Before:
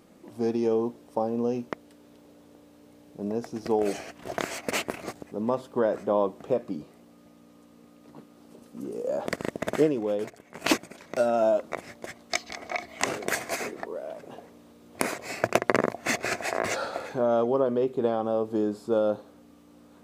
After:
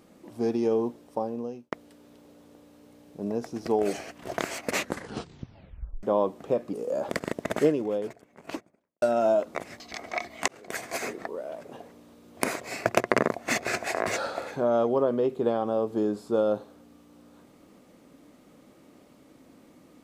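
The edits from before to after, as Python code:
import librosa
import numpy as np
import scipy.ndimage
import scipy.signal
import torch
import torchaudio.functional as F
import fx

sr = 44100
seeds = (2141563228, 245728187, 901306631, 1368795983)

y = fx.studio_fade_out(x, sr, start_s=9.82, length_s=1.37)
y = fx.edit(y, sr, fx.fade_out_span(start_s=0.76, length_s=0.96, curve='qsin'),
    fx.tape_stop(start_s=4.68, length_s=1.35),
    fx.cut(start_s=6.73, length_s=2.17),
    fx.cut(start_s=11.97, length_s=0.41),
    fx.fade_in_span(start_s=13.06, length_s=0.57), tone=tone)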